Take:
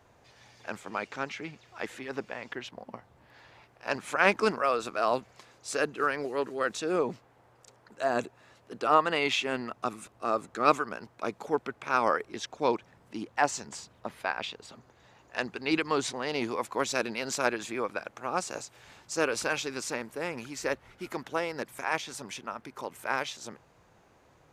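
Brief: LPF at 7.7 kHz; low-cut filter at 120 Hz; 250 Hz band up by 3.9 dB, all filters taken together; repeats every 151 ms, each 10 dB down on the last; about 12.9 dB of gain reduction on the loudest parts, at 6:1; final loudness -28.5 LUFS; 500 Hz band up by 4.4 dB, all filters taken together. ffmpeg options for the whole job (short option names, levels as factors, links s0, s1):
-af "highpass=120,lowpass=7700,equalizer=f=250:t=o:g=3.5,equalizer=f=500:t=o:g=4.5,acompressor=threshold=0.0398:ratio=6,aecho=1:1:151|302|453|604:0.316|0.101|0.0324|0.0104,volume=2.11"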